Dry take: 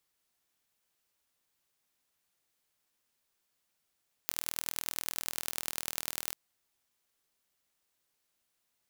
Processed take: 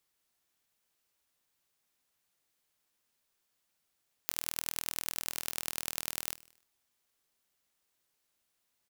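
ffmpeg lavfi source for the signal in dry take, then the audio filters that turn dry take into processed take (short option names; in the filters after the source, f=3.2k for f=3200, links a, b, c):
-f lavfi -i "aevalsrc='0.631*eq(mod(n,1097),0)*(0.5+0.5*eq(mod(n,4388),0))':d=2.05:s=44100"
-af "aecho=1:1:75|150|225|300:0.1|0.05|0.025|0.0125"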